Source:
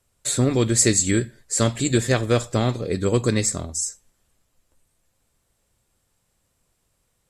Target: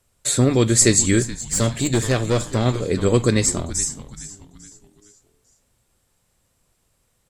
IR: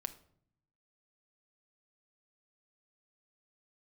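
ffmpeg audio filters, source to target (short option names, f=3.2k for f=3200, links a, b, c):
-filter_complex "[0:a]asplit=2[a][b];[b]asplit=4[c][d][e][f];[c]adelay=424,afreqshift=-130,volume=-14.5dB[g];[d]adelay=848,afreqshift=-260,volume=-22.5dB[h];[e]adelay=1272,afreqshift=-390,volume=-30.4dB[i];[f]adelay=1696,afreqshift=-520,volume=-38.4dB[j];[g][h][i][j]amix=inputs=4:normalize=0[k];[a][k]amix=inputs=2:normalize=0,asettb=1/sr,asplit=3[l][m][n];[l]atrim=end=1.224[o];[m]atrim=start=1.22:end=2.66,asetpts=PTS-STARTPTS,afade=t=in:d=0.004:c=qsin,afade=t=out:st=1.436:d=0.004:c=qsin,aeval=exprs='(tanh(5.62*val(0)+0.3)-tanh(0.3))/5.62':c=same[p];[n]atrim=start=2.656[q];[o][p]acrossfade=d=0.004:c1=hsin:c2=qsin[r];[r][q]acrossfade=d=0.004:c1=qsin:c2=hsin,volume=3dB"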